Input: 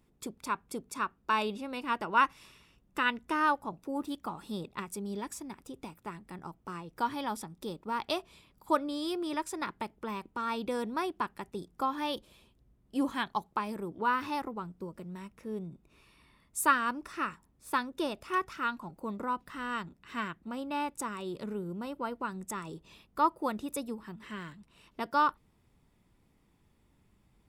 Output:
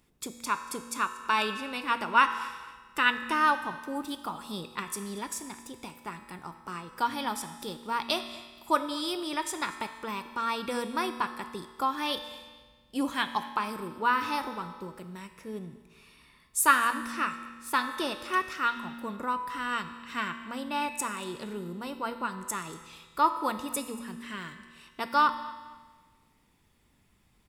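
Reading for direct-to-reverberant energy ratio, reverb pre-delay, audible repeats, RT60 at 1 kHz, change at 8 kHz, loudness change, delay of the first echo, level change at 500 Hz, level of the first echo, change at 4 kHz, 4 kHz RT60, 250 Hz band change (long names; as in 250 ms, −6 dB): 8.0 dB, 4 ms, 2, 1.5 s, +7.5 dB, +3.5 dB, 234 ms, +0.5 dB, −21.0 dB, +7.0 dB, 1.4 s, 0.0 dB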